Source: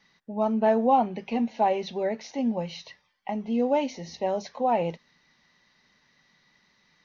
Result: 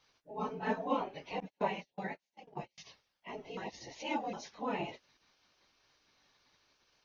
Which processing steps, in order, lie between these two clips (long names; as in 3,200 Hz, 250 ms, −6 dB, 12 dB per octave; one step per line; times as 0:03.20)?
random phases in long frames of 50 ms
gate on every frequency bin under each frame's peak −10 dB weak
0:01.40–0:02.78: noise gate −38 dBFS, range −36 dB
0:03.57–0:04.33: reverse
level −2.5 dB